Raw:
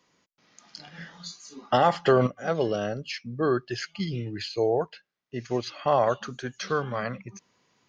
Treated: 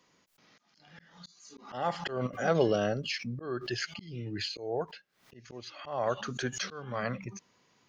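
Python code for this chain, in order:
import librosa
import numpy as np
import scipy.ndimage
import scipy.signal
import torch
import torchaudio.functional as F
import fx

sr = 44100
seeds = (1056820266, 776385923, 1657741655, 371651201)

y = fx.auto_swell(x, sr, attack_ms=454.0)
y = fx.pre_swell(y, sr, db_per_s=110.0)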